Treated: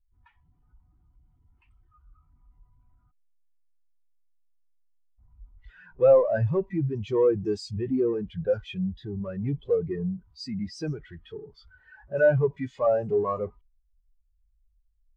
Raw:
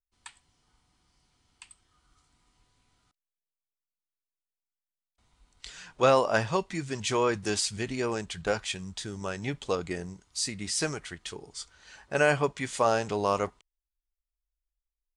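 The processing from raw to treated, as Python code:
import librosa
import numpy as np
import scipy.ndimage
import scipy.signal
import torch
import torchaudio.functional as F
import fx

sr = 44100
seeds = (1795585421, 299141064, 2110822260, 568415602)

y = fx.env_lowpass(x, sr, base_hz=2100.0, full_db=-22.0)
y = fx.power_curve(y, sr, exponent=0.35)
y = fx.spectral_expand(y, sr, expansion=2.5)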